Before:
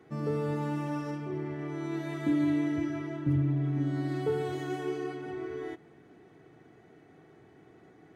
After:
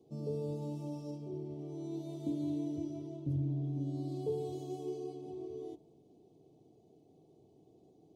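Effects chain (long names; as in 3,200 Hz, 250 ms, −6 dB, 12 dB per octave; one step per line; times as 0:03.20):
Chebyshev band-stop filter 620–4,300 Hz, order 2
hum removal 59.19 Hz, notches 27
level −5.5 dB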